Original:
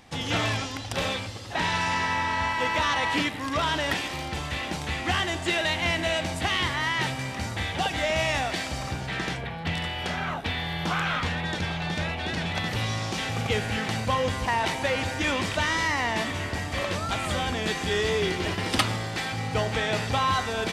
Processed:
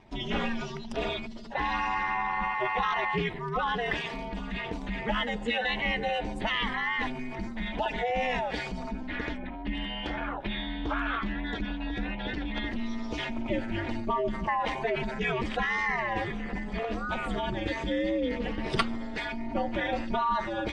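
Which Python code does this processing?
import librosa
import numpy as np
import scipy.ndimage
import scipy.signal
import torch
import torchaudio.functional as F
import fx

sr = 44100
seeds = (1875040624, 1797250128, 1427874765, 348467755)

y = fx.spec_expand(x, sr, power=1.8)
y = y * np.sin(2.0 * np.pi * 120.0 * np.arange(len(y)) / sr)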